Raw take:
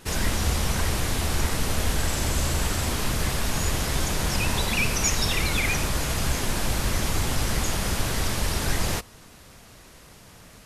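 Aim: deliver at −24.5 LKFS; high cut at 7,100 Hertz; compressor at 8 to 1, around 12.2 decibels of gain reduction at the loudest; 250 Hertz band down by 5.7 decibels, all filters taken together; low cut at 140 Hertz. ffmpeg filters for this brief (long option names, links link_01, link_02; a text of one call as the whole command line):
ffmpeg -i in.wav -af "highpass=140,lowpass=7100,equalizer=frequency=250:width_type=o:gain=-7,acompressor=threshold=-35dB:ratio=8,volume=12.5dB" out.wav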